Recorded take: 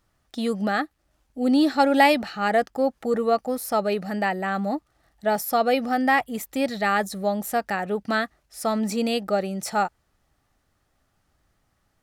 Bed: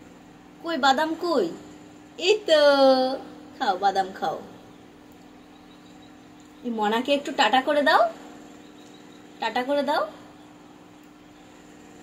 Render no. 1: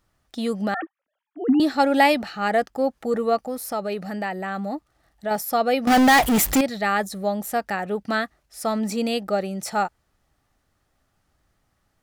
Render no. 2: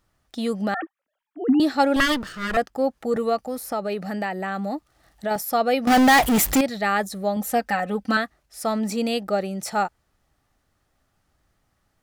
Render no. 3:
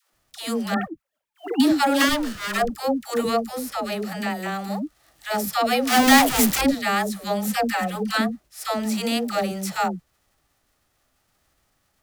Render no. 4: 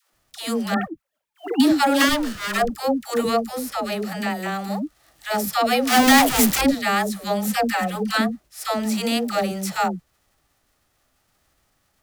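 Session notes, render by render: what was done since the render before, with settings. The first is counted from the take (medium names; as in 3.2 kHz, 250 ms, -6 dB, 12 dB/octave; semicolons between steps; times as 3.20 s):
0.74–1.60 s: formants replaced by sine waves; 3.47–5.31 s: compression 1.5:1, threshold -29 dBFS; 5.87–6.61 s: power-law waveshaper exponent 0.35
1.96–2.57 s: comb filter that takes the minimum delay 0.61 ms; 3.16–5.36 s: three bands compressed up and down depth 40%; 7.36–8.17 s: comb 3.9 ms, depth 83%
formants flattened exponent 0.6; phase dispersion lows, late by 133 ms, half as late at 450 Hz
trim +1.5 dB; peak limiter -3 dBFS, peak gain reduction 2.5 dB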